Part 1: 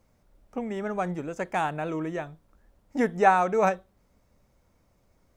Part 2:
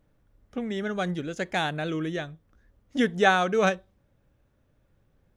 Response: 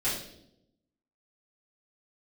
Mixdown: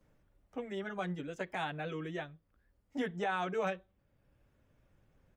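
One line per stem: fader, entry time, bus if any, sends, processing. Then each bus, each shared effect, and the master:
-9.0 dB, 0.00 s, no send, reverb removal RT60 1.2 s; Bessel high-pass 220 Hz, order 2
-3.0 dB, 10 ms, no send, resonant high shelf 4400 Hz -14 dB, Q 1.5; auto duck -8 dB, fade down 0.40 s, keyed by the first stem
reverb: off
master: limiter -25.5 dBFS, peak gain reduction 12 dB

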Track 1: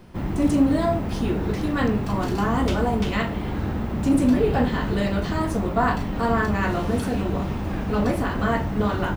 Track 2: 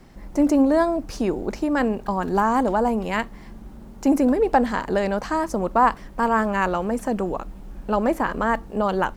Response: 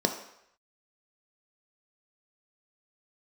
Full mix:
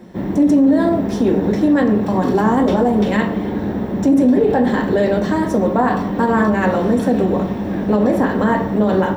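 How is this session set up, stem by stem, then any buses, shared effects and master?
-3.5 dB, 0.00 s, send -6.5 dB, bell 7900 Hz -5.5 dB 0.78 oct
-4.0 dB, 0.00 s, send -8.5 dB, dry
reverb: on, RT60 0.75 s, pre-delay 3 ms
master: limiter -6.5 dBFS, peak gain reduction 9.5 dB

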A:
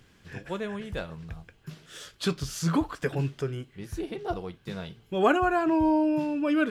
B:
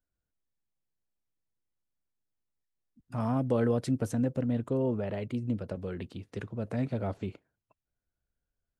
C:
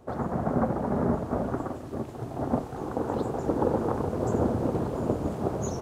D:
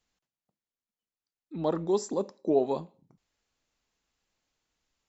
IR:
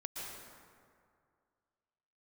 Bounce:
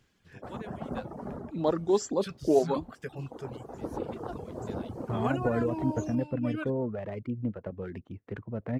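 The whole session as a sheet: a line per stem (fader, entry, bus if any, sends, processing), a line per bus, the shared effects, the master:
-10.0 dB, 0.00 s, no send, dry
0.0 dB, 1.95 s, no send, LPF 2200 Hz 24 dB/oct; running maximum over 3 samples
-9.5 dB, 0.35 s, no send, auto duck -7 dB, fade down 0.20 s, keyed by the fourth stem
+2.0 dB, 0.00 s, no send, dry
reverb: off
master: reverb removal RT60 0.64 s

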